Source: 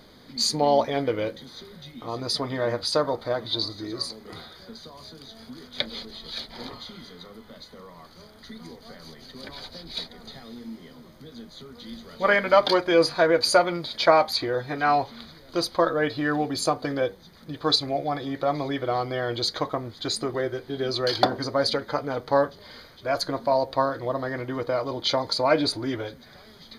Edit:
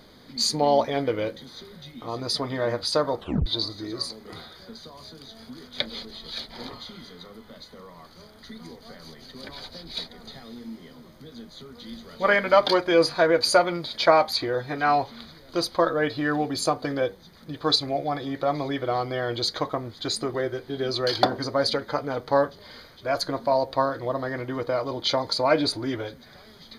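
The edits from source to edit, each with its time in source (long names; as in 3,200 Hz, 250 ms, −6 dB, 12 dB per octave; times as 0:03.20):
0:03.19: tape stop 0.27 s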